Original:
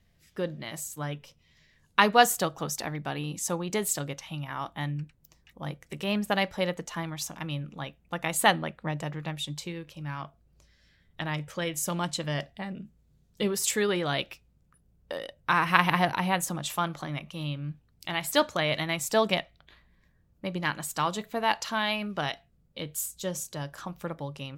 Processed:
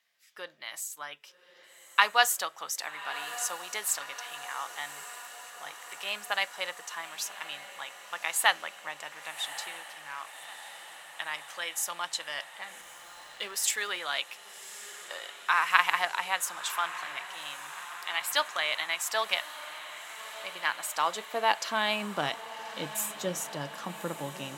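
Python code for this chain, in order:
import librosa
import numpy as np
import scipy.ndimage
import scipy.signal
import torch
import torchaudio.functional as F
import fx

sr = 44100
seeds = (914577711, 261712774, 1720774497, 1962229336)

y = fx.filter_sweep_highpass(x, sr, from_hz=1100.0, to_hz=200.0, start_s=20.4, end_s=22.29, q=0.87)
y = fx.echo_diffused(y, sr, ms=1167, feedback_pct=70, wet_db=-13.5)
y = fx.backlash(y, sr, play_db=-47.5, at=(12.81, 13.99))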